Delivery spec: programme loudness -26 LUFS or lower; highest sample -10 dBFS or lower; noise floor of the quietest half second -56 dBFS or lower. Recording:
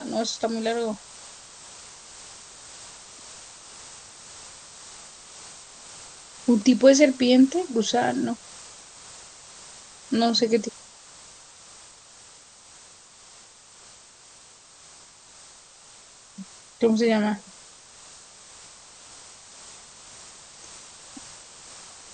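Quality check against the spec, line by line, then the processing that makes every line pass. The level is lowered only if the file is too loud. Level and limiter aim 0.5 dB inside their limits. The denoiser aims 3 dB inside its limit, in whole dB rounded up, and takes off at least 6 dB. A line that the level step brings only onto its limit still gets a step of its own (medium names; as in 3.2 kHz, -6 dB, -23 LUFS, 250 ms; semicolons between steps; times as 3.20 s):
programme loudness -22.0 LUFS: fail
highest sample -4.0 dBFS: fail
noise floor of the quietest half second -51 dBFS: fail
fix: noise reduction 6 dB, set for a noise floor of -51 dBFS; trim -4.5 dB; peak limiter -10.5 dBFS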